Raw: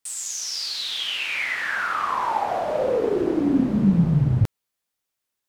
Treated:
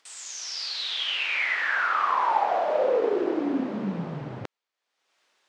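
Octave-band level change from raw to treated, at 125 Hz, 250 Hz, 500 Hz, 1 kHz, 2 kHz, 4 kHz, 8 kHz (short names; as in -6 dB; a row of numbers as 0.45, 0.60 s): -17.0 dB, -8.5 dB, -1.0 dB, +0.5 dB, 0.0 dB, -2.0 dB, n/a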